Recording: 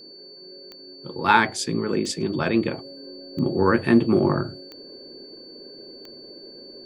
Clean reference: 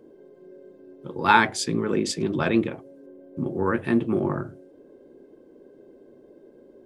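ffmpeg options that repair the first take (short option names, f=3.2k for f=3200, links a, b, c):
-af "adeclick=t=4,bandreject=f=4.5k:w=30,asetnsamples=n=441:p=0,asendcmd='2.66 volume volume -5dB',volume=0dB"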